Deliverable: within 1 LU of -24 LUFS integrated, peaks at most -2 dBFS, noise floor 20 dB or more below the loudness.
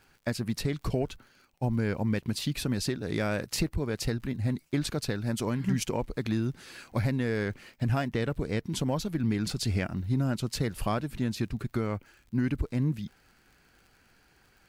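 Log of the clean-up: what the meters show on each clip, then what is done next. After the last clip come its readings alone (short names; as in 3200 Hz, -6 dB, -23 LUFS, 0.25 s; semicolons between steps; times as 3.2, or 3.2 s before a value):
ticks 47/s; loudness -31.0 LUFS; peak -16.5 dBFS; loudness target -24.0 LUFS
-> de-click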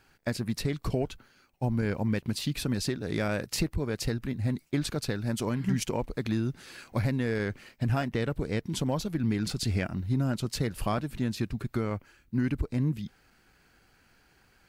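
ticks 0.068/s; loudness -31.0 LUFS; peak -16.5 dBFS; loudness target -24.0 LUFS
-> gain +7 dB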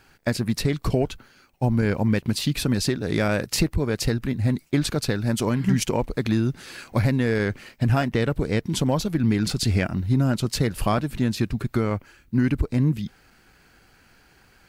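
loudness -24.0 LUFS; peak -9.5 dBFS; noise floor -57 dBFS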